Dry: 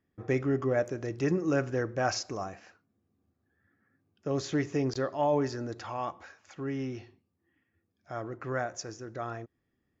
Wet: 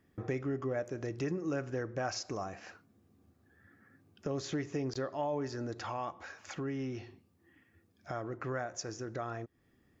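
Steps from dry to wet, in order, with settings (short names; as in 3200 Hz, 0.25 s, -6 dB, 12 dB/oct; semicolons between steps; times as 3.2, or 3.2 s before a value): compressor 2.5:1, threshold -50 dBFS, peak gain reduction 17.5 dB; gain +9 dB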